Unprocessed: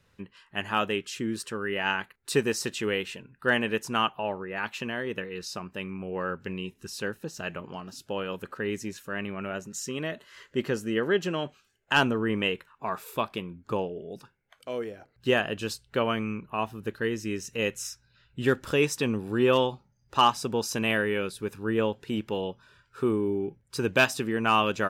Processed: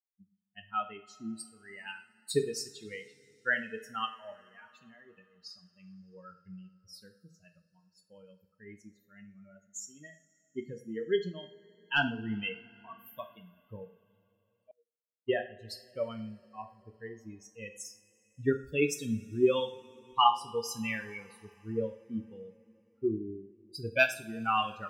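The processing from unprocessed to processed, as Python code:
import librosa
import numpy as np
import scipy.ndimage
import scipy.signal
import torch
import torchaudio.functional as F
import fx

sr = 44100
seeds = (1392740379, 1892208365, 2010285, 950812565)

y = fx.bin_expand(x, sr, power=3.0)
y = fx.rev_double_slope(y, sr, seeds[0], early_s=0.41, late_s=3.4, knee_db=-22, drr_db=5.0)
y = fx.upward_expand(y, sr, threshold_db=-47.0, expansion=2.5, at=(14.71, 15.33))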